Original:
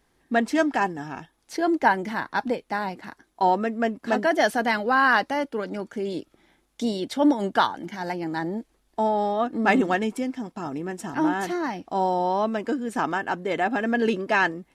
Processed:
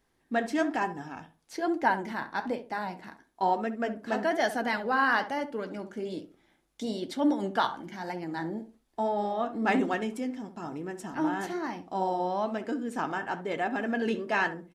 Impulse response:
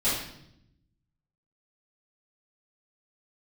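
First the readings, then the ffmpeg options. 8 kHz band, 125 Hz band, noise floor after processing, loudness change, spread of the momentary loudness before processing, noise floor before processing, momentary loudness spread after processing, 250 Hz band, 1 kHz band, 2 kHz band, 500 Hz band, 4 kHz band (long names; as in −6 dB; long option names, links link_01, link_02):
−6.5 dB, −6.0 dB, −71 dBFS, −6.0 dB, 11 LU, −68 dBFS, 11 LU, −5.5 dB, −6.0 dB, −6.0 dB, −6.0 dB, −6.0 dB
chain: -filter_complex "[0:a]flanger=delay=7.4:depth=7.4:regen=-62:speed=1.1:shape=sinusoidal,asplit=2[link_01][link_02];[link_02]adelay=67,lowpass=frequency=1200:poles=1,volume=-10.5dB,asplit=2[link_03][link_04];[link_04]adelay=67,lowpass=frequency=1200:poles=1,volume=0.29,asplit=2[link_05][link_06];[link_06]adelay=67,lowpass=frequency=1200:poles=1,volume=0.29[link_07];[link_01][link_03][link_05][link_07]amix=inputs=4:normalize=0,volume=-2dB"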